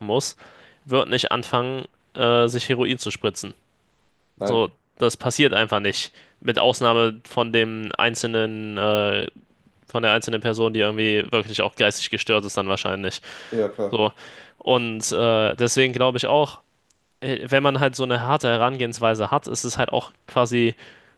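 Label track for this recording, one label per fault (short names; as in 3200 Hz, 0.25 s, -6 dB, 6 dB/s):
8.950000	8.950000	pop -9 dBFS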